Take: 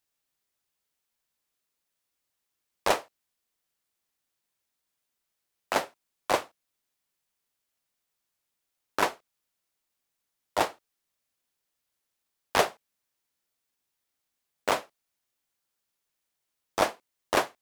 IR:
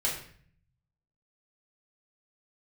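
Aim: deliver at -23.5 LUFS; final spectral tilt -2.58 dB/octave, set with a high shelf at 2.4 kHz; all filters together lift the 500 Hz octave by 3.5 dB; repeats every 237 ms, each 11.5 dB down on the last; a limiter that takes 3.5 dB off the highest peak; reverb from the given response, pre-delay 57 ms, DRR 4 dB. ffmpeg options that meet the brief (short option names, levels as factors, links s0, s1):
-filter_complex "[0:a]equalizer=f=500:t=o:g=4,highshelf=f=2400:g=6.5,alimiter=limit=0.355:level=0:latency=1,aecho=1:1:237|474|711:0.266|0.0718|0.0194,asplit=2[s0][s1];[1:a]atrim=start_sample=2205,adelay=57[s2];[s1][s2]afir=irnorm=-1:irlink=0,volume=0.282[s3];[s0][s3]amix=inputs=2:normalize=0,volume=1.78"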